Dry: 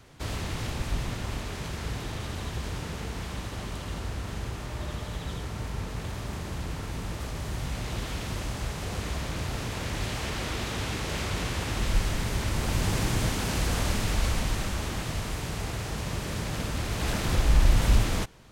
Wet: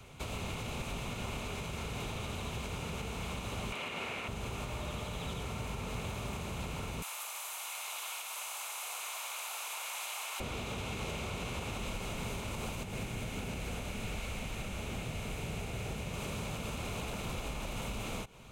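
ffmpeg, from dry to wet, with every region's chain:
-filter_complex "[0:a]asettb=1/sr,asplit=3[s0][s1][s2];[s0]atrim=end=3.724[s3];[s1]atrim=start=3.72:end=4.28,asetpts=PTS-STARTPTS,afade=t=in:d=0.004:c=qsin,afade=t=out:st=0.556:d=0.004:c=qsin,highpass=280,equalizer=f=2200:t=o:w=1.4:g=13[s4];[s2]atrim=start=4.276[s5];[s3][s4]acrossfade=d=0.004:c1=hsin:c2=qsin[s6];[s6][s5]acrossfade=d=0.004:c1=qsin:c2=hsin,asettb=1/sr,asplit=3[s7][s8][s9];[s7]atrim=end=7.024[s10];[s8]atrim=start=7.02:end=10.4,asetpts=PTS-STARTPTS,afade=t=in:d=0.004:c=qsin,afade=t=out:st=3.376:d=0.004:c=qsin,highpass=f=860:w=0.5412,highpass=f=860:w=1.3066,equalizer=f=13000:t=o:w=1.4:g=14[s11];[s9]atrim=start=10.396[s12];[s10][s11]acrossfade=d=0.004:c1=hsin:c2=qsin[s13];[s13][s12]acrossfade=d=0.004:c1=qsin:c2=hsin,asettb=1/sr,asplit=3[s14][s15][s16];[s14]atrim=end=12.834[s17];[s15]atrim=start=12.83:end=16.14,asetpts=PTS-STARTPTS,afade=t=in:d=0.004:c=qsin,afade=t=out:st=3.306:d=0.004:c=qsin,equalizer=f=1100:w=1.5:g=-8.5,acrossover=split=930|2000[s18][s19][s20];[s18]acompressor=threshold=0.0224:ratio=4[s21];[s19]acompressor=threshold=0.00447:ratio=4[s22];[s20]acompressor=threshold=0.00316:ratio=4[s23];[s21][s22][s23]amix=inputs=3:normalize=0[s24];[s16]atrim=start=16.136[s25];[s17][s24]acrossfade=d=0.004:c1=hsin:c2=qsin[s26];[s26][s25]acrossfade=d=0.004:c1=qsin:c2=hsin,acrossover=split=160|1000[s27][s28][s29];[s27]acompressor=threshold=0.01:ratio=4[s30];[s28]acompressor=threshold=0.0141:ratio=4[s31];[s29]acompressor=threshold=0.00891:ratio=4[s32];[s30][s31][s32]amix=inputs=3:normalize=0,superequalizer=6b=0.562:11b=0.447:12b=1.58:14b=0.562,alimiter=level_in=2:limit=0.0631:level=0:latency=1:release=133,volume=0.501,volume=1.12"

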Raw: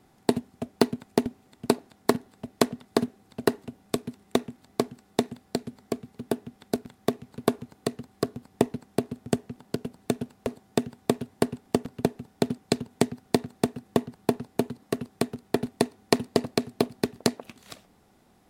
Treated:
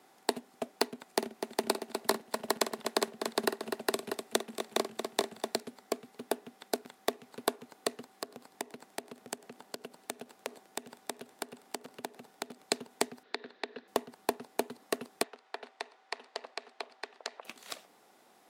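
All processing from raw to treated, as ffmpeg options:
-filter_complex "[0:a]asettb=1/sr,asplit=3[s0][s1][s2];[s0]atrim=end=1.054[s3];[s1]atrim=start=1.05:end=5.6,asetpts=PTS-STARTPTS,afade=t=in:d=0.004:c=qsin,afade=t=out:st=4.546:d=0.004:c=qsin,afreqshift=-17,aecho=1:1:50|249|411|641:0.299|0.251|0.668|0.224,atrim=end_sample=200655[s4];[s2]atrim=start=5.596[s5];[s3][s4]acrossfade=d=0.004:c1=hsin:c2=qsin[s6];[s6][s5]acrossfade=d=0.004:c1=qsin:c2=hsin,asettb=1/sr,asplit=3[s7][s8][s9];[s7]atrim=end=8.104[s10];[s8]atrim=start=8.1:end=12.65,asetpts=PTS-STARTPTS,afade=t=in:d=0.004:c=qsin,afade=t=out:st=4.546:d=0.004:c=qsin,acompressor=threshold=0.0158:ratio=4:attack=3.2:release=140:knee=1:detection=peak,asplit=6[s11][s12][s13][s14][s15][s16];[s12]adelay=98,afreqshift=-40,volume=0.0708[s17];[s13]adelay=196,afreqshift=-80,volume=0.0447[s18];[s14]adelay=294,afreqshift=-120,volume=0.0282[s19];[s15]adelay=392,afreqshift=-160,volume=0.0178[s20];[s16]adelay=490,afreqshift=-200,volume=0.0111[s21];[s11][s17][s18][s19][s20][s21]amix=inputs=6:normalize=0,atrim=end_sample=200655[s22];[s9]atrim=start=12.646[s23];[s10][s22]acrossfade=d=0.004:c1=hsin:c2=qsin[s24];[s24][s23]acrossfade=d=0.004:c1=qsin:c2=hsin,asettb=1/sr,asplit=3[s25][s26][s27];[s25]atrim=end=13.234[s28];[s26]atrim=start=13.23:end=13.88,asetpts=PTS-STARTPTS,afade=t=in:d=0.004:c=qsin,afade=t=out:st=0.646:d=0.004:c=qsin,highpass=260,equalizer=f=450:t=q:w=4:g=4,equalizer=f=770:t=q:w=4:g=-7,equalizer=f=1200:t=q:w=4:g=-3,equalizer=f=1700:t=q:w=4:g=7,equalizer=f=3900:t=q:w=4:g=7,lowpass=f=4200:w=0.5412,lowpass=f=4200:w=1.3066,acompressor=threshold=0.0224:ratio=6:attack=3.2:release=140:knee=1:detection=peak[s29];[s27]atrim=start=13.876[s30];[s28][s29]acrossfade=d=0.004:c1=hsin:c2=qsin[s31];[s31][s30]acrossfade=d=0.004:c1=qsin:c2=hsin,asettb=1/sr,asplit=3[s32][s33][s34];[s32]atrim=end=15.234[s35];[s33]atrim=start=15.23:end=17.45,asetpts=PTS-STARTPTS,afade=t=in:d=0.004:c=qsin,afade=t=out:st=2.216:d=0.004:c=qsin,highpass=650,lowpass=3900,acompressor=threshold=0.00891:ratio=2.5:attack=3.2:release=140:knee=1:detection=peak[s36];[s34]atrim=start=17.446[s37];[s35][s36]acrossfade=d=0.004:c1=hsin:c2=qsin[s38];[s38][s37]acrossfade=d=0.004:c1=qsin:c2=hsin,highpass=440,acompressor=threshold=0.0316:ratio=3,volume=1.33"

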